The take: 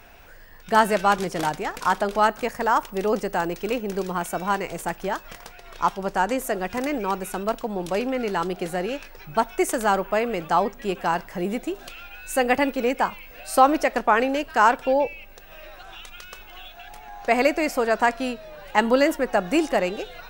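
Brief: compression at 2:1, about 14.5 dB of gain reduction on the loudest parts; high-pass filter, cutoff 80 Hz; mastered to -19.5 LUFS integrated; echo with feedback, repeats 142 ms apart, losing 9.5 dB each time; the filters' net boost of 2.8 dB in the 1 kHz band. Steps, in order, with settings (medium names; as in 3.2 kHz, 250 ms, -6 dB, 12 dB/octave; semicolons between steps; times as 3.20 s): high-pass 80 Hz; peaking EQ 1 kHz +3.5 dB; compression 2:1, threshold -36 dBFS; feedback delay 142 ms, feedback 33%, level -9.5 dB; trim +13.5 dB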